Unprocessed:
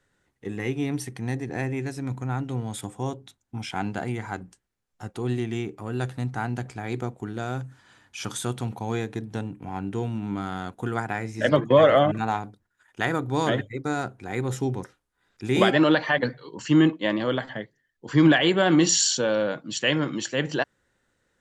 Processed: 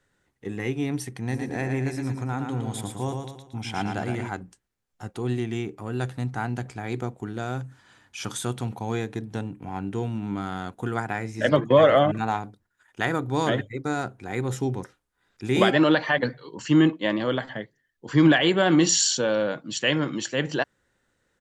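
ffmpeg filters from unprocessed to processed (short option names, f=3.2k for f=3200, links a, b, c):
-filter_complex "[0:a]asplit=3[a][b][c];[a]afade=t=out:st=1.3:d=0.02[d];[b]aecho=1:1:114|228|342|456|570:0.562|0.242|0.104|0.0447|0.0192,afade=t=in:st=1.3:d=0.02,afade=t=out:st=4.28:d=0.02[e];[c]afade=t=in:st=4.28:d=0.02[f];[d][e][f]amix=inputs=3:normalize=0"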